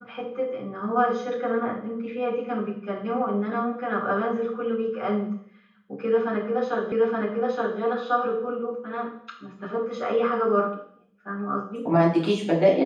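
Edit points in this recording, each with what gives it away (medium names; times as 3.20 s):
6.92 s: repeat of the last 0.87 s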